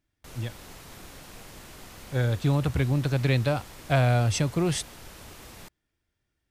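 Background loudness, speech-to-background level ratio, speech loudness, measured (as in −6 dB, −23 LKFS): −45.5 LKFS, 20.0 dB, −25.5 LKFS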